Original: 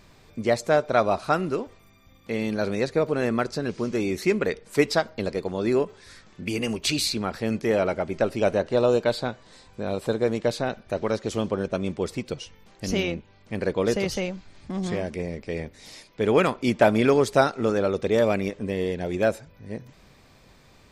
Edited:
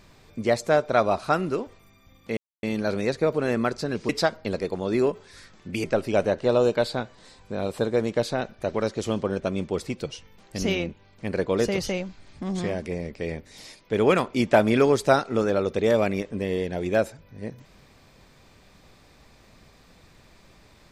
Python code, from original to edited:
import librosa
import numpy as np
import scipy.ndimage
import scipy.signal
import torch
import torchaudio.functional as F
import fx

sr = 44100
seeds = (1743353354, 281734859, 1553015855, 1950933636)

y = fx.edit(x, sr, fx.insert_silence(at_s=2.37, length_s=0.26),
    fx.cut(start_s=3.83, length_s=0.99),
    fx.cut(start_s=6.57, length_s=1.55), tone=tone)